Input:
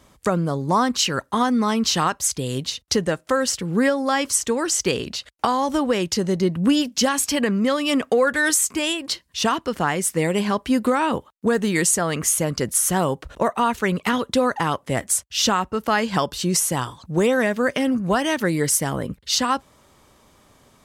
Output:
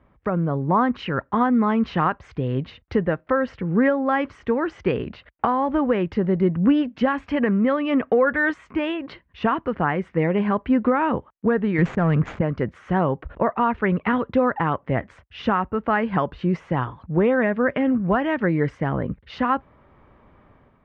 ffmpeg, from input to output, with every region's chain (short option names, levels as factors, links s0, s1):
-filter_complex "[0:a]asettb=1/sr,asplit=3[s0][s1][s2];[s0]atrim=end=11.784[s3];[s1]atrim=start=11.78:end=12.41,asetpts=PTS-STARTPTS,afade=t=in:d=0.004:c=qsin,afade=t=out:st=0.626:d=0.004:c=qsin,equalizer=f=140:t=o:w=1.2:g=11,adynamicsmooth=sensitivity=3.5:basefreq=580,lowpass=f=7300:t=q:w=4.4[s4];[s2]atrim=start=12.406[s5];[s3][s4]acrossfade=d=0.004:c1=hsin:c2=qsin[s6];[s6][s5]acrossfade=d=0.004:c1=qsin:c2=hsin,lowpass=f=2200:w=0.5412,lowpass=f=2200:w=1.3066,lowshelf=f=160:g=5,dynaudnorm=f=140:g=5:m=2.24,volume=0.501"